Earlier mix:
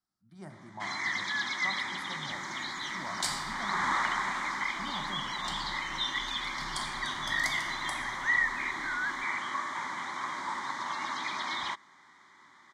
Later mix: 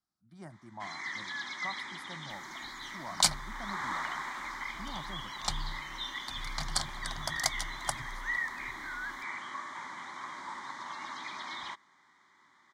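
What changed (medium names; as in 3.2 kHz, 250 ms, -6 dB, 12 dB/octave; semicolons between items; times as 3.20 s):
first sound -6.5 dB; second sound +11.0 dB; reverb: off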